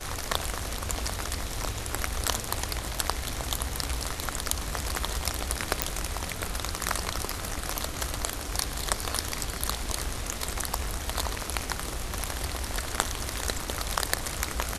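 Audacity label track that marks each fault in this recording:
5.820000	5.820000	pop -2 dBFS

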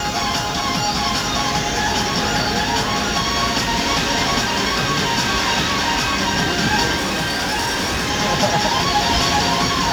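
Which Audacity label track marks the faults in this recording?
6.960000	8.110000	clipped -17.5 dBFS

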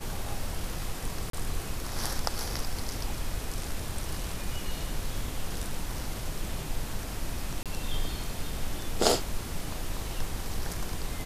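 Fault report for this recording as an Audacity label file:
1.300000	1.330000	dropout 33 ms
7.630000	7.660000	dropout 27 ms

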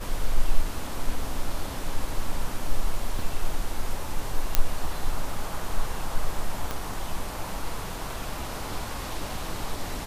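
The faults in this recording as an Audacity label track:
3.190000	3.190000	dropout 2.1 ms
4.550000	4.550000	pop -3 dBFS
6.710000	6.710000	pop -15 dBFS

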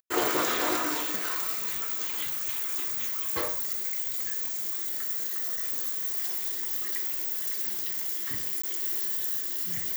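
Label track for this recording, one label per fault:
8.620000	8.630000	dropout 15 ms

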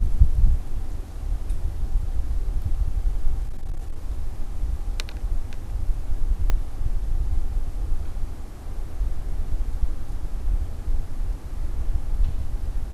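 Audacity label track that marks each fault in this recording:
3.420000	3.960000	clipped -23 dBFS
6.500000	6.500000	pop -10 dBFS

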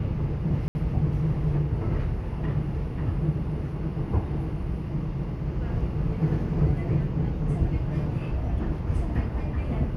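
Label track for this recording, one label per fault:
0.680000	0.750000	dropout 70 ms

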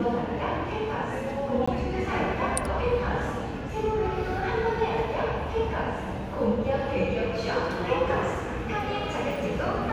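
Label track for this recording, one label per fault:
1.660000	1.680000	dropout 15 ms

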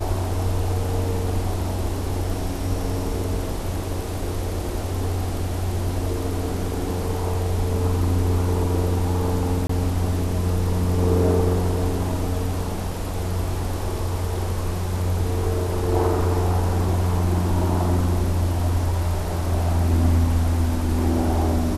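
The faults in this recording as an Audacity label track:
9.670000	9.690000	dropout 24 ms

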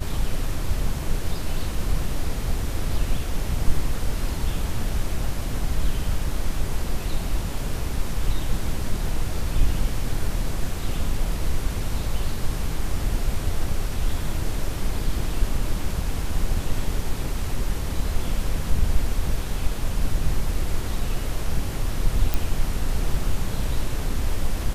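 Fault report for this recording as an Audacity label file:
22.340000	22.340000	pop

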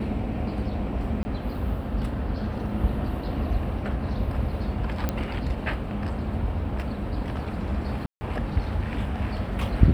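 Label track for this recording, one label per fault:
1.230000	1.250000	dropout 20 ms
5.090000	5.090000	pop -12 dBFS
8.060000	8.210000	dropout 150 ms

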